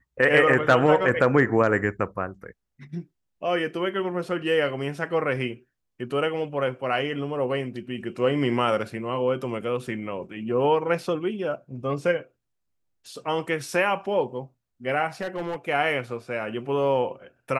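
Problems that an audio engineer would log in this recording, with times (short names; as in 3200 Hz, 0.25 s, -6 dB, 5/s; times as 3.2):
15.21–15.56 clipped -25.5 dBFS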